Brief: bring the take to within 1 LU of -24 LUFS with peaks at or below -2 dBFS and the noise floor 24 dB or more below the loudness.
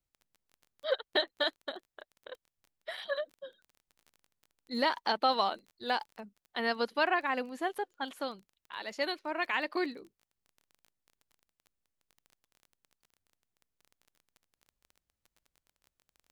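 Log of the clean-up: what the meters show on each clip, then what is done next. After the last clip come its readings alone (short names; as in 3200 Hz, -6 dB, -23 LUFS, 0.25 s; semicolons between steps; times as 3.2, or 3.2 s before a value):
ticks 20/s; loudness -33.5 LUFS; peak -15.0 dBFS; loudness target -24.0 LUFS
-> de-click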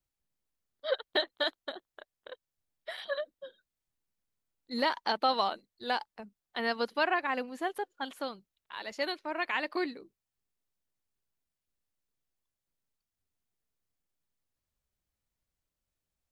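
ticks 0/s; loudness -33.5 LUFS; peak -15.0 dBFS; loudness target -24.0 LUFS
-> gain +9.5 dB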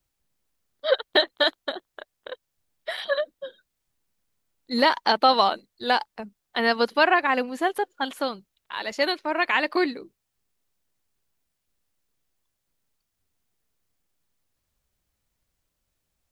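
loudness -24.0 LUFS; peak -5.5 dBFS; noise floor -80 dBFS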